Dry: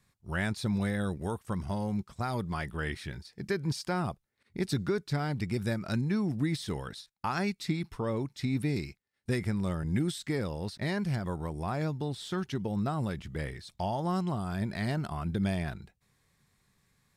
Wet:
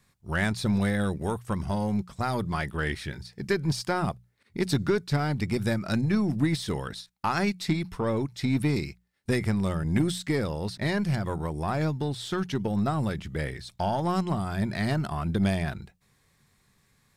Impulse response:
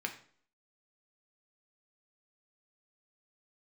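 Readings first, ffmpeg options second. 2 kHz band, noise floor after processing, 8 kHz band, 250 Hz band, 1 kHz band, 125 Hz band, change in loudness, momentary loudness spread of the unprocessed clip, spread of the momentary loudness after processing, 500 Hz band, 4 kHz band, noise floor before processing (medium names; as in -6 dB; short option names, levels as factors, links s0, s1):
+5.5 dB, -68 dBFS, +5.0 dB, +4.5 dB, +5.0 dB, +4.0 dB, +4.5 dB, 7 LU, 7 LU, +5.0 dB, +5.0 dB, -76 dBFS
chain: -af "bandreject=f=60:t=h:w=6,bandreject=f=120:t=h:w=6,bandreject=f=180:t=h:w=6,aeval=exprs='0.133*(cos(1*acos(clip(val(0)/0.133,-1,1)))-cos(1*PI/2))+0.00668*(cos(4*acos(clip(val(0)/0.133,-1,1)))-cos(4*PI/2))+0.00944*(cos(6*acos(clip(val(0)/0.133,-1,1)))-cos(6*PI/2))+0.00075*(cos(8*acos(clip(val(0)/0.133,-1,1)))-cos(8*PI/2))':c=same,volume=1.78"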